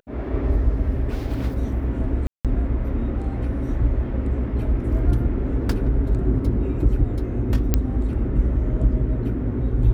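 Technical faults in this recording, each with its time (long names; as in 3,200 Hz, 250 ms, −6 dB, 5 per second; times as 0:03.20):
0:02.27–0:02.45: drop-out 177 ms
0:07.74: click −5 dBFS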